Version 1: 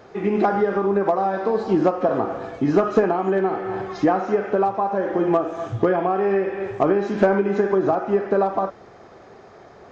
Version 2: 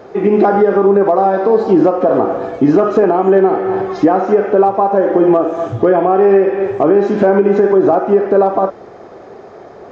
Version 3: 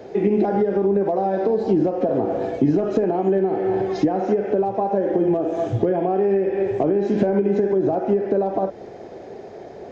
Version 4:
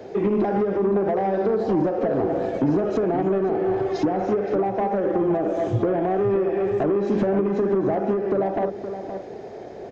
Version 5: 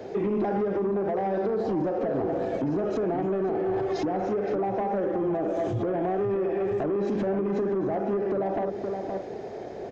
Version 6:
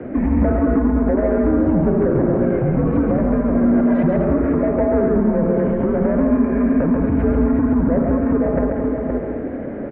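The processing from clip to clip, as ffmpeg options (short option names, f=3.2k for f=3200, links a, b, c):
-af "equalizer=f=440:w=0.54:g=8.5,alimiter=level_in=4.5dB:limit=-1dB:release=50:level=0:latency=1,volume=-1dB"
-filter_complex "[0:a]equalizer=f=1.2k:w=2.3:g=-14,acrossover=split=180[a][b];[b]acompressor=threshold=-17dB:ratio=6[c];[a][c]amix=inputs=2:normalize=0,volume=-1dB"
-filter_complex "[0:a]acrossover=split=150[a][b];[b]asoftclip=type=tanh:threshold=-16.5dB[c];[a][c]amix=inputs=2:normalize=0,asplit=2[d][e];[e]adelay=519,volume=-9dB,highshelf=f=4k:g=-11.7[f];[d][f]amix=inputs=2:normalize=0"
-af "alimiter=limit=-21dB:level=0:latency=1:release=49"
-af "aecho=1:1:137|218.7:0.631|0.398,highpass=f=170:t=q:w=0.5412,highpass=f=170:t=q:w=1.307,lowpass=f=2.4k:t=q:w=0.5176,lowpass=f=2.4k:t=q:w=0.7071,lowpass=f=2.4k:t=q:w=1.932,afreqshift=-140,volume=8.5dB"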